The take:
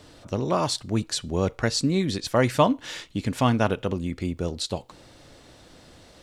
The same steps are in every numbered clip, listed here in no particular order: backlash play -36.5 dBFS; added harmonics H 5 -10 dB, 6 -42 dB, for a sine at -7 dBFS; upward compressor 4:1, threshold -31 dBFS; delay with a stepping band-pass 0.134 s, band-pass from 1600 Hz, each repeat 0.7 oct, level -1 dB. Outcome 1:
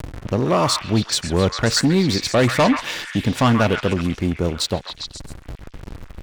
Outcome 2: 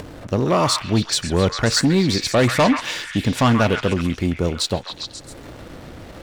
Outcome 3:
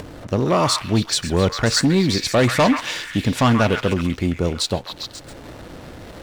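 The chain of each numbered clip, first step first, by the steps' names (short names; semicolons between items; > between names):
backlash > upward compressor > added harmonics > delay with a stepping band-pass; added harmonics > backlash > delay with a stepping band-pass > upward compressor; added harmonics > delay with a stepping band-pass > backlash > upward compressor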